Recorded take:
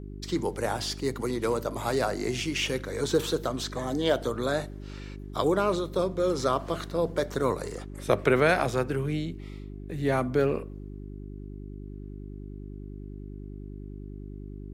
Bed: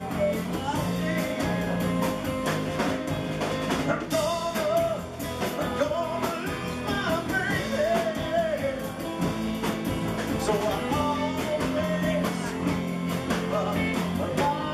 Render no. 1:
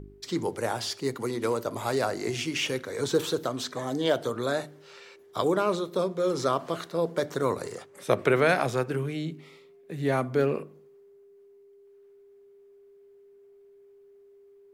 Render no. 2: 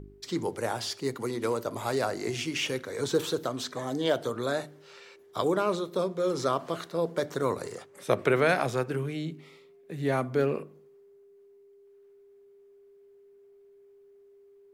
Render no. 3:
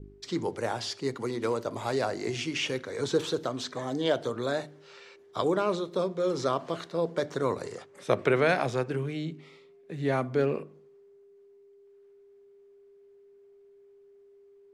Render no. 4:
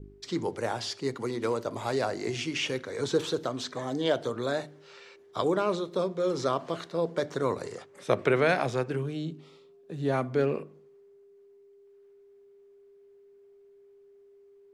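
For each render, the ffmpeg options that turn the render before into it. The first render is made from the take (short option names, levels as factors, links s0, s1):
-af "bandreject=f=50:t=h:w=4,bandreject=f=100:t=h:w=4,bandreject=f=150:t=h:w=4,bandreject=f=200:t=h:w=4,bandreject=f=250:t=h:w=4,bandreject=f=300:t=h:w=4,bandreject=f=350:t=h:w=4"
-af "volume=0.841"
-af "lowpass=7200,adynamicequalizer=threshold=0.00447:dfrequency=1300:dqfactor=3.8:tfrequency=1300:tqfactor=3.8:attack=5:release=100:ratio=0.375:range=2:mode=cutabove:tftype=bell"
-filter_complex "[0:a]asettb=1/sr,asplit=3[s0][s1][s2];[s0]atrim=end=9.024[s3];[s1]atrim=start=9.02:end=10.14,asetpts=PTS-STARTPTS,afade=t=in:d=0.004:c=qsin,afade=t=out:st=1.116:d=0.004:c=qsin,equalizer=f=2100:w=3.3:g=-12[s4];[s2]atrim=start=10.136[s5];[s3][s4]acrossfade=d=0.004:c1=hsin:c2=qsin[s6];[s6][s5]acrossfade=d=0.004:c1=qsin:c2=hsin"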